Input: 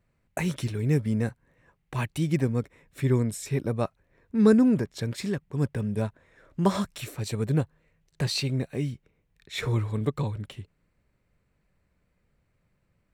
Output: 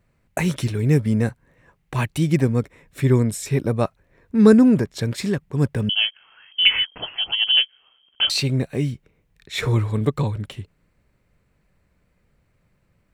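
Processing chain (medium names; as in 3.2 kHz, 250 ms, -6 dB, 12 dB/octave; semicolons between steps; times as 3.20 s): 5.89–8.30 s: frequency inversion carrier 3.2 kHz; trim +6.5 dB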